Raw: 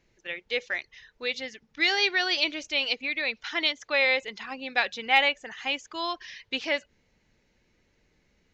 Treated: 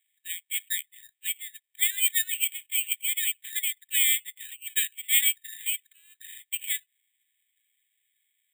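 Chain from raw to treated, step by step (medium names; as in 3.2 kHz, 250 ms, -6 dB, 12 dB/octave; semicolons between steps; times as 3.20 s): rippled Chebyshev high-pass 1.7 kHz, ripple 6 dB; careless resampling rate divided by 8×, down filtered, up zero stuff; trim -4 dB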